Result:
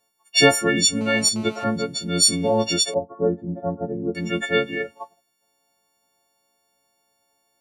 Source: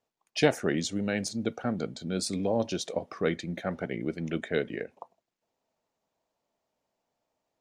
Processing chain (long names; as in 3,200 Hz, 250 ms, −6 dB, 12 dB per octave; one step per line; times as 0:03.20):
every partial snapped to a pitch grid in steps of 4 semitones
0:01.01–0:01.64: phone interference −45 dBFS
0:02.94–0:04.15: inverse Chebyshev low-pass filter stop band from 2,200 Hz, stop band 50 dB
level +6.5 dB